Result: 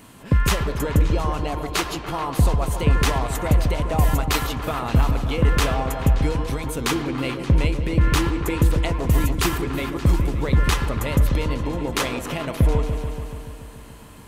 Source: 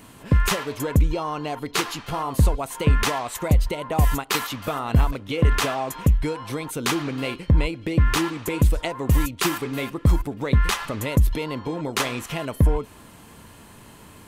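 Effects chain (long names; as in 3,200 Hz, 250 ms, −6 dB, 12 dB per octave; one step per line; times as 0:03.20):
echo whose low-pass opens from repeat to repeat 144 ms, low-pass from 750 Hz, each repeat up 1 octave, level −6 dB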